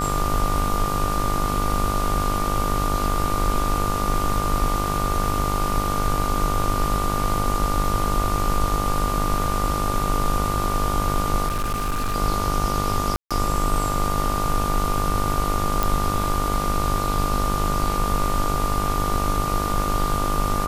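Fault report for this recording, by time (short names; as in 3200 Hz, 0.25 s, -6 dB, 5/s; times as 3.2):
buzz 50 Hz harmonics 29 -27 dBFS
tone 1200 Hz -26 dBFS
11.47–12.16 clipped -20 dBFS
13.16–13.31 gap 0.146 s
15.83 pop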